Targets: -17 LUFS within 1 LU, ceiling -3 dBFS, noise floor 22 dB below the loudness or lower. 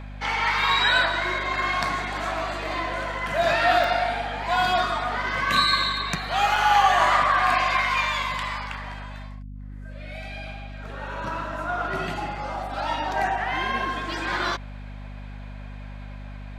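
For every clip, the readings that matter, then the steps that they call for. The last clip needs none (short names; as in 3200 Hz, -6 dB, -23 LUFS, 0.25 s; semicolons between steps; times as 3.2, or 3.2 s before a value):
dropouts 2; longest dropout 2.9 ms; hum 50 Hz; harmonics up to 250 Hz; hum level -35 dBFS; loudness -23.5 LUFS; peak -7.5 dBFS; loudness target -17.0 LUFS
-> interpolate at 3.84/6.56, 2.9 ms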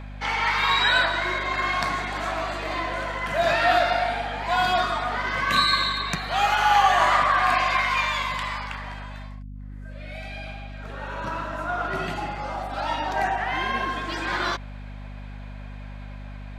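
dropouts 0; hum 50 Hz; harmonics up to 250 Hz; hum level -35 dBFS
-> de-hum 50 Hz, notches 5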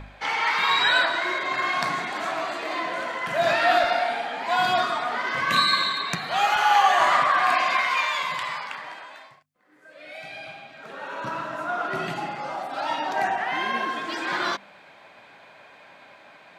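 hum none; loudness -23.5 LUFS; peak -7.5 dBFS; loudness target -17.0 LUFS
-> gain +6.5 dB; limiter -3 dBFS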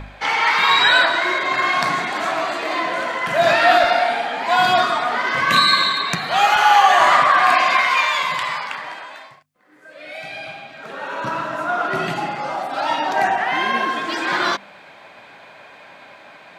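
loudness -17.0 LUFS; peak -3.0 dBFS; noise floor -44 dBFS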